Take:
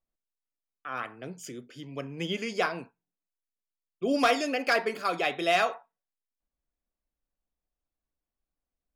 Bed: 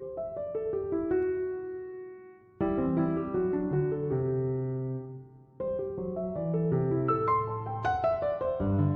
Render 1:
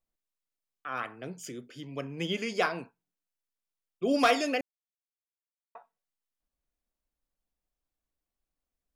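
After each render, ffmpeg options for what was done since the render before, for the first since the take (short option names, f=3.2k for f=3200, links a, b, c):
-filter_complex "[0:a]asplit=3[a][b][c];[a]atrim=end=4.61,asetpts=PTS-STARTPTS,afade=t=out:st=4.606:d=0.004:c=hsin[d];[b]atrim=start=4.61:end=5.75,asetpts=PTS-STARTPTS,volume=0[e];[c]atrim=start=5.75,asetpts=PTS-STARTPTS,afade=t=in:d=0.004:c=hsin[f];[d][e][f]concat=n=3:v=0:a=1"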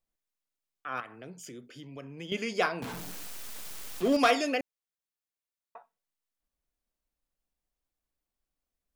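-filter_complex "[0:a]asettb=1/sr,asplit=3[a][b][c];[a]atrim=end=1.004[d];[b]atrim=start=1:end=2.32,asetpts=PTS-STARTPTS,afade=t=in:d=0.004:c=qsin,afade=t=out:st=1.316:d=0.004:c=qsin,acompressor=threshold=-44dB:ratio=2:attack=3.2:release=140:knee=1:detection=peak[e];[c]atrim=start=2.316[f];[d][e]acrossfade=d=0.004:c1=hsin:c2=qsin[g];[g][f]acrossfade=d=0.004:c1=qsin:c2=hsin,asettb=1/sr,asplit=3[h][i][j];[h]atrim=end=2.824[k];[i]atrim=start=2.82:end=4.17,asetpts=PTS-STARTPTS,afade=t=in:d=0.004:c=qsin,afade=t=out:st=1.346:d=0.004:c=qsin,aeval=exprs='val(0)+0.5*0.0237*sgn(val(0))':c=same[l];[j]atrim=start=4.166[m];[k][l]acrossfade=d=0.004:c1=hsin:c2=qsin[n];[n][m]acrossfade=d=0.004:c1=qsin:c2=hsin"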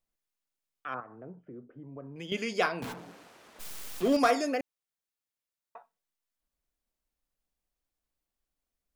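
-filter_complex "[0:a]asettb=1/sr,asplit=3[a][b][c];[a]atrim=end=0.944[d];[b]atrim=start=0.94:end=2.16,asetpts=PTS-STARTPTS,afade=t=in:d=0.004:c=qsin,afade=t=out:st=1.216:d=0.004:c=qsin,lowpass=f=1.2k:w=0.5412,lowpass=f=1.2k:w=1.3066[e];[c]atrim=start=2.156[f];[d][e]acrossfade=d=0.004:c1=hsin:c2=qsin[g];[g][f]acrossfade=d=0.004:c1=qsin:c2=hsin,asplit=3[h][i][j];[h]afade=t=out:st=2.92:d=0.02[k];[i]bandpass=f=540:t=q:w=0.54,afade=t=in:st=2.92:d=0.02,afade=t=out:st=3.59:d=0.02[l];[j]afade=t=in:st=3.59:d=0.02[m];[k][l][m]amix=inputs=3:normalize=0,asettb=1/sr,asplit=3[n][o][p];[n]atrim=end=4.194[q];[o]atrim=start=4.19:end=4.6,asetpts=PTS-STARTPTS,afade=t=in:d=0.004:c=qsin,afade=t=out:st=0.406:d=0.004:c=qsin,equalizer=f=3k:t=o:w=0.77:g=-11.5[r];[p]atrim=start=4.596[s];[q][r]acrossfade=d=0.004:c1=hsin:c2=qsin[t];[t][s]acrossfade=d=0.004:c1=qsin:c2=hsin"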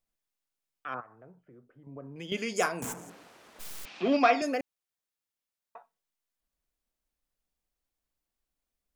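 -filter_complex "[0:a]asettb=1/sr,asplit=3[a][b][c];[a]atrim=end=1.014[d];[b]atrim=start=1.01:end=1.87,asetpts=PTS-STARTPTS,afade=t=in:d=0.004:c=qsin,afade=t=out:st=0.856:d=0.004:c=qsin,equalizer=f=270:w=0.57:g=-11[e];[c]atrim=start=1.866[f];[d][e]acrossfade=d=0.004:c1=hsin:c2=qsin[g];[g][f]acrossfade=d=0.004:c1=qsin:c2=hsin,asettb=1/sr,asplit=3[h][i][j];[h]atrim=end=2.564[k];[i]atrim=start=2.56:end=3.1,asetpts=PTS-STARTPTS,afade=t=in:d=0.004:c=qsin,afade=t=out:st=0.536:d=0.004:c=qsin,highshelf=f=5.5k:t=q:w=3:g=10[l];[j]atrim=start=3.096[m];[k][l]acrossfade=d=0.004:c1=hsin:c2=qsin[n];[n][m]acrossfade=d=0.004:c1=qsin:c2=hsin,asettb=1/sr,asplit=3[o][p][q];[o]atrim=end=3.854[r];[p]atrim=start=3.85:end=4.42,asetpts=PTS-STARTPTS,afade=t=in:d=0.004:c=qsin,afade=t=out:st=0.566:d=0.004:c=qsin,highpass=f=160:w=0.5412,highpass=f=160:w=1.3066,equalizer=f=460:t=q:w=4:g=-4,equalizer=f=750:t=q:w=4:g=4,equalizer=f=2.5k:t=q:w=4:g=9,lowpass=f=4.8k:w=0.5412,lowpass=f=4.8k:w=1.3066[s];[q]atrim=start=4.416[t];[r][s]acrossfade=d=0.004:c1=hsin:c2=qsin[u];[u][t]acrossfade=d=0.004:c1=qsin:c2=hsin"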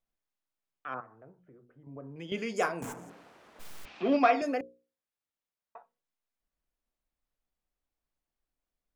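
-af "highshelf=f=3.3k:g=-10,bandreject=f=60:t=h:w=6,bandreject=f=120:t=h:w=6,bandreject=f=180:t=h:w=6,bandreject=f=240:t=h:w=6,bandreject=f=300:t=h:w=6,bandreject=f=360:t=h:w=6,bandreject=f=420:t=h:w=6,bandreject=f=480:t=h:w=6,bandreject=f=540:t=h:w=6"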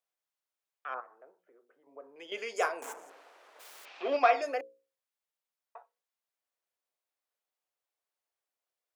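-af "highpass=f=430:w=0.5412,highpass=f=430:w=1.3066"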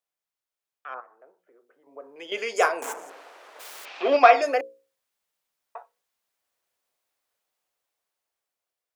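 -af "dynaudnorm=f=590:g=7:m=11.5dB"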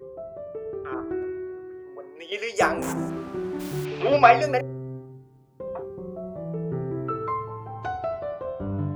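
-filter_complex "[1:a]volume=-2dB[a];[0:a][a]amix=inputs=2:normalize=0"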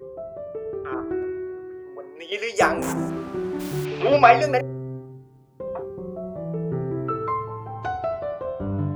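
-af "volume=2.5dB,alimiter=limit=-2dB:level=0:latency=1"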